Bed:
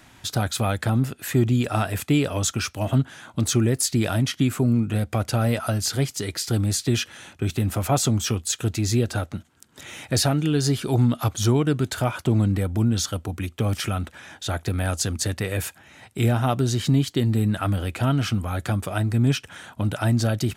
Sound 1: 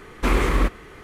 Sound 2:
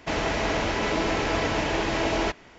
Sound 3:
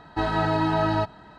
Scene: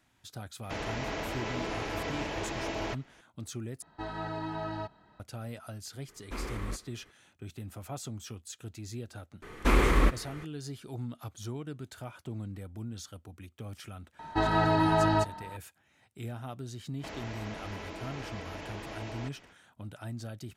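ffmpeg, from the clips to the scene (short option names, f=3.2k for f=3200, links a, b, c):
-filter_complex "[2:a]asplit=2[a][b];[3:a]asplit=2[c][d];[1:a]asplit=2[e][f];[0:a]volume=-19dB[g];[d]aeval=exprs='val(0)+0.00891*sin(2*PI*910*n/s)':c=same[h];[b]acompressor=threshold=-32dB:ratio=6:attack=3.2:release=140:knee=1:detection=peak[i];[g]asplit=2[j][k];[j]atrim=end=3.824[l];[c]atrim=end=1.38,asetpts=PTS-STARTPTS,volume=-13.5dB[m];[k]atrim=start=5.196[n];[a]atrim=end=2.58,asetpts=PTS-STARTPTS,volume=-10dB,afade=t=in:d=0.004:c=hsin,afade=t=out:st=2.576:d=0.004:c=hsin,adelay=630[o];[e]atrim=end=1.03,asetpts=PTS-STARTPTS,volume=-18dB,afade=t=in:d=0.004:c=hsin,afade=t=out:st=1.026:d=0.004:c=hsin,adelay=6080[p];[f]atrim=end=1.03,asetpts=PTS-STARTPTS,volume=-3.5dB,afade=t=in:d=0.004:c=hsin,afade=t=out:st=1.026:d=0.004:c=hsin,adelay=9420[q];[h]atrim=end=1.38,asetpts=PTS-STARTPTS,volume=-2dB,afade=t=in:d=0.004:c=hsin,afade=t=out:st=1.376:d=0.004:c=hsin,adelay=14190[r];[i]atrim=end=2.58,asetpts=PTS-STARTPTS,volume=-7dB,afade=t=in:d=0.05,afade=t=out:st=2.53:d=0.05,adelay=16970[s];[l][m]acrossfade=d=0.004:c1=hsin:c2=hsin[t];[t][n]acrossfade=d=0.004:c1=hsin:c2=hsin[u];[u][o][p][q][r][s]amix=inputs=6:normalize=0"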